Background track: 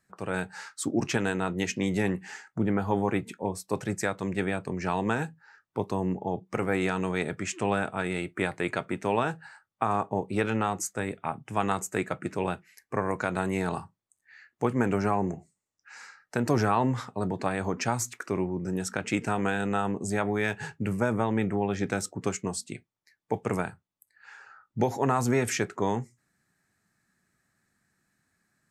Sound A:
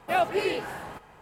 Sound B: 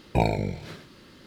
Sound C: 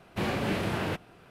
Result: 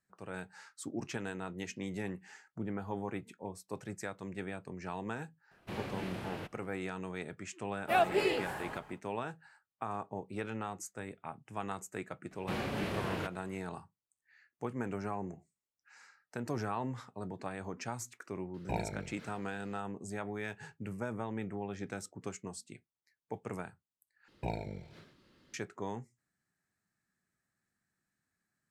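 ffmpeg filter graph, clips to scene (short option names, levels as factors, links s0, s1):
-filter_complex "[3:a]asplit=2[s0][s1];[2:a]asplit=2[s2][s3];[0:a]volume=0.251[s4];[s2]equalizer=f=1400:t=o:w=1.1:g=7[s5];[s3]highshelf=f=6000:g=-5[s6];[s4]asplit=2[s7][s8];[s7]atrim=end=24.284[s9];[s6]atrim=end=1.26,asetpts=PTS-STARTPTS,volume=0.188[s10];[s8]atrim=start=25.536[s11];[s0]atrim=end=1.3,asetpts=PTS-STARTPTS,volume=0.266,afade=t=in:d=0.004:c=hsin,afade=t=out:st=1.296:d=0.004:c=hsin,adelay=5510[s12];[1:a]atrim=end=1.21,asetpts=PTS-STARTPTS,volume=0.668,afade=t=in:d=0.1,afade=t=out:st=1.11:d=0.1,adelay=7800[s13];[s1]atrim=end=1.3,asetpts=PTS-STARTPTS,volume=0.473,afade=t=in:d=0.004:c=hsin,afade=t=out:st=1.296:d=0.004:c=hsin,adelay=12310[s14];[s5]atrim=end=1.26,asetpts=PTS-STARTPTS,volume=0.188,afade=t=in:d=0.004:c=hsin,afade=t=out:st=1.256:d=0.004:c=hsin,adelay=18540[s15];[s9][s10]acrossfade=d=0.004:c1=hsin:c2=hsin[s16];[s16][s11]acrossfade=d=0.004:c1=hsin:c2=hsin[s17];[s17][s12][s13][s14][s15]amix=inputs=5:normalize=0"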